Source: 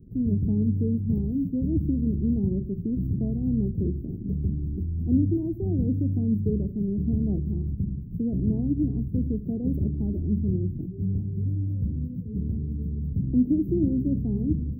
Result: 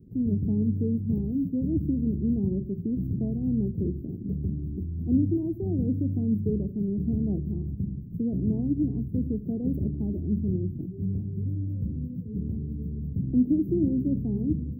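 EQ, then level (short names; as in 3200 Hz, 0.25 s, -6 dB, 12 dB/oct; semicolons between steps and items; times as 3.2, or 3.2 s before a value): HPF 100 Hz 6 dB/oct; 0.0 dB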